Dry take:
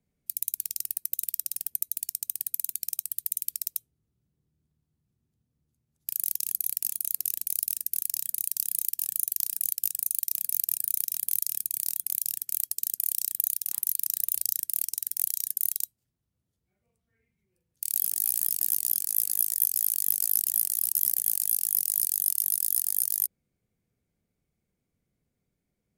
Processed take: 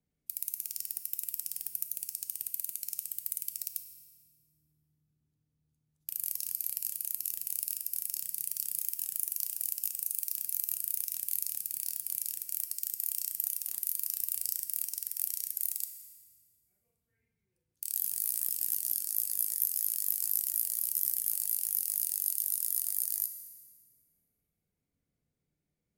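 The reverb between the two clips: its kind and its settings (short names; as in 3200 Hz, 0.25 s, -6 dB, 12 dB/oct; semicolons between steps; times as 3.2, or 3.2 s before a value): FDN reverb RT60 1.7 s, low-frequency decay 1.4×, high-frequency decay 0.9×, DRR 7.5 dB; gain -6 dB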